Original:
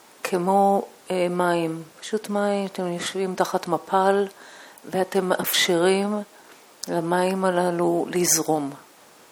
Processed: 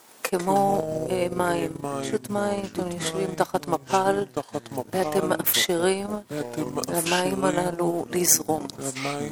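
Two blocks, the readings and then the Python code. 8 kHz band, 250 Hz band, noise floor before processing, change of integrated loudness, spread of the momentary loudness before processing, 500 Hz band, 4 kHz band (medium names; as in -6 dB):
+1.5 dB, -2.0 dB, -51 dBFS, -2.0 dB, 11 LU, -2.0 dB, -1.0 dB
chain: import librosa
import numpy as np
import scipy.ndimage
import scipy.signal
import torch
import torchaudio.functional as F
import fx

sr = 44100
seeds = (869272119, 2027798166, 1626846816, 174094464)

y = fx.high_shelf(x, sr, hz=8500.0, db=9.0)
y = fx.echo_pitch(y, sr, ms=83, semitones=-4, count=3, db_per_echo=-6.0)
y = fx.transient(y, sr, attack_db=3, sustain_db=-12)
y = y * 10.0 ** (-3.5 / 20.0)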